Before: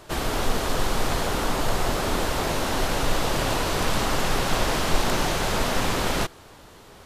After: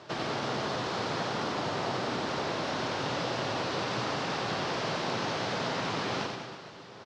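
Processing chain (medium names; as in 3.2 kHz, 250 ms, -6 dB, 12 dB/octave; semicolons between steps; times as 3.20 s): Chebyshev band-pass 120–5300 Hz, order 3; compression 5:1, threshold -30 dBFS, peak gain reduction 8 dB; reverse bouncing-ball echo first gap 90 ms, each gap 1.15×, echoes 5; trim -1.5 dB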